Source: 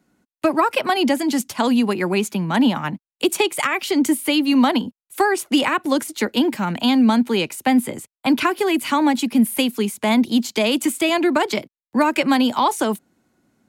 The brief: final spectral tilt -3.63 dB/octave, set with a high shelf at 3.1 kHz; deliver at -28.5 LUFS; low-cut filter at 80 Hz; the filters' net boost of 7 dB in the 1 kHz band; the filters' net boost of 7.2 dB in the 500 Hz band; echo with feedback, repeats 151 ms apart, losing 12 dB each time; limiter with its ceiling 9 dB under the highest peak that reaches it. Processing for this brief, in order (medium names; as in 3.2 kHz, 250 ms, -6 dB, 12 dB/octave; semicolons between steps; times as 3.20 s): high-pass 80 Hz; peaking EQ 500 Hz +8 dB; peaking EQ 1 kHz +5.5 dB; treble shelf 3.1 kHz +5 dB; peak limiter -8 dBFS; feedback delay 151 ms, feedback 25%, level -12 dB; trim -11 dB